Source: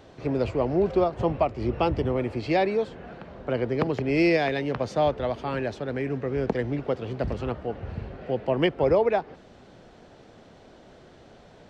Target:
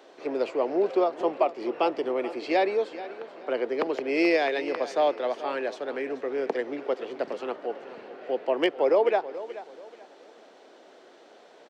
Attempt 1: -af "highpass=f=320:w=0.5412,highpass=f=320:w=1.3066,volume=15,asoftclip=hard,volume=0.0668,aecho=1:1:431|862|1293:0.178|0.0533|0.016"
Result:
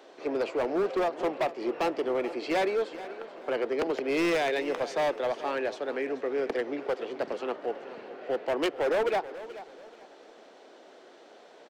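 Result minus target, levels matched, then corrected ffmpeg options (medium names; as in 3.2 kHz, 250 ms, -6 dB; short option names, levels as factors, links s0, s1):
overload inside the chain: distortion +36 dB
-af "highpass=f=320:w=0.5412,highpass=f=320:w=1.3066,volume=4.22,asoftclip=hard,volume=0.237,aecho=1:1:431|862|1293:0.178|0.0533|0.016"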